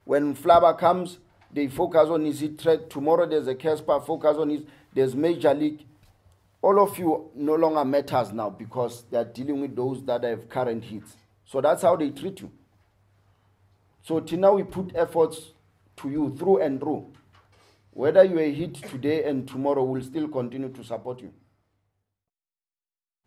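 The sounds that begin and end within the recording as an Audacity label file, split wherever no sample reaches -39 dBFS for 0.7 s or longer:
6.630000	12.490000	sound
14.060000	17.040000	sound
17.960000	21.290000	sound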